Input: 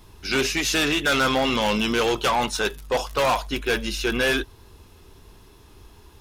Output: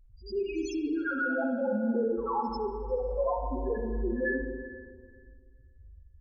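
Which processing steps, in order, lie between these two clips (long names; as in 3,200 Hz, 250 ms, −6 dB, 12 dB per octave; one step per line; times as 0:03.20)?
spectral peaks only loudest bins 1
backwards echo 93 ms −19 dB
spring reverb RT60 1.9 s, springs 40/58 ms, chirp 50 ms, DRR 1.5 dB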